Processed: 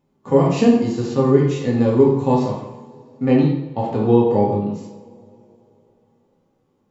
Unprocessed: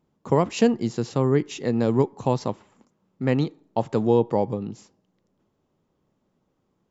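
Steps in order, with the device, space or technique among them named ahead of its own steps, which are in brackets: bathroom (reverberation RT60 0.60 s, pre-delay 3 ms, DRR -1 dB); 3.36–4.25 s: low-pass 5.1 kHz 12 dB/octave; harmonic-percussive split percussive -12 dB; two-slope reverb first 0.67 s, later 3.3 s, from -18 dB, DRR 5.5 dB; trim +3.5 dB

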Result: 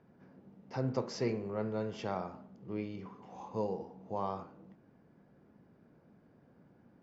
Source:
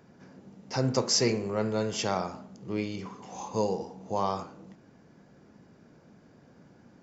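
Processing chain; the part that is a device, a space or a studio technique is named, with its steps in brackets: phone in a pocket (low-pass 3.9 kHz 12 dB/octave; treble shelf 2.2 kHz -8 dB); trim -6.5 dB

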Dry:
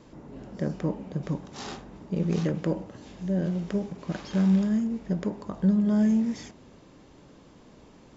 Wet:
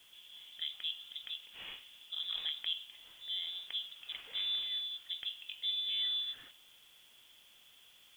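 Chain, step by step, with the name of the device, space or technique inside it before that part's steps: scrambled radio voice (band-pass 310–2700 Hz; frequency inversion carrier 3.7 kHz; white noise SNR 26 dB); trim -6.5 dB

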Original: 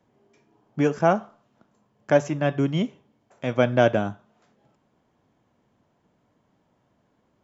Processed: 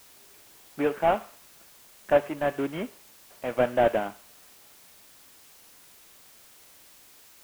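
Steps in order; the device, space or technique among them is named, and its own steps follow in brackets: army field radio (band-pass 370–2900 Hz; CVSD coder 16 kbps; white noise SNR 23 dB)

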